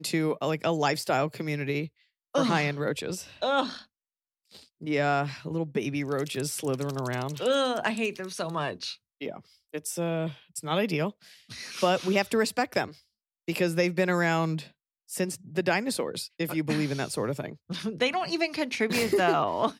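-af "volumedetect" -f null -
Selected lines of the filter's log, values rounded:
mean_volume: -29.1 dB
max_volume: -11.0 dB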